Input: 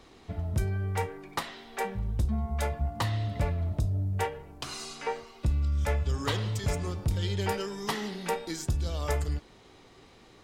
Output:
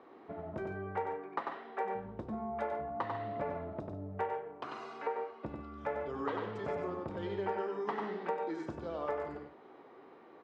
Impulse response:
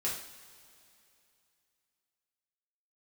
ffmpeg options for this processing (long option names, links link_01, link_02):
-filter_complex "[0:a]asuperpass=centerf=650:order=4:qfactor=0.55,asplit=2[link_01][link_02];[link_02]aecho=0:1:94|144:0.562|0.211[link_03];[link_01][link_03]amix=inputs=2:normalize=0,acompressor=threshold=-34dB:ratio=3,volume=1dB"